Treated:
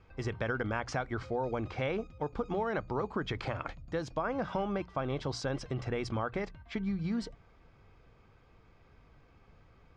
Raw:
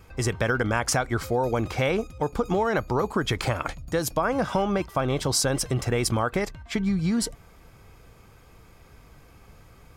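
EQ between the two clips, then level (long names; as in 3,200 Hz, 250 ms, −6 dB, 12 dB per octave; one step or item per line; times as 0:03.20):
low-pass filter 5,600 Hz 12 dB per octave
high-frequency loss of the air 110 metres
mains-hum notches 60/120/180 Hz
−8.5 dB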